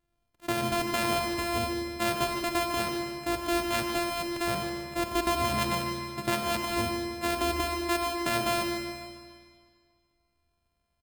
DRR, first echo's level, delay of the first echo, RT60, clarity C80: 2.5 dB, -10.5 dB, 149 ms, 1.9 s, 4.0 dB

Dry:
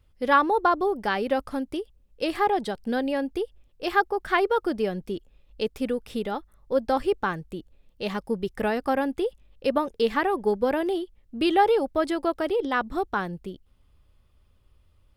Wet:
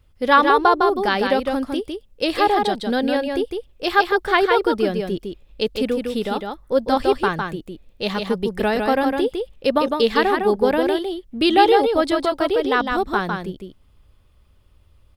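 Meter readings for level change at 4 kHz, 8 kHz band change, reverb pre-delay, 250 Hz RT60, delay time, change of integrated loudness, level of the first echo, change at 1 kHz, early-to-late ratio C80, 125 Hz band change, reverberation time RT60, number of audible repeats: +10.5 dB, no reading, no reverb, no reverb, 156 ms, +6.5 dB, -4.5 dB, +6.5 dB, no reverb, +6.5 dB, no reverb, 1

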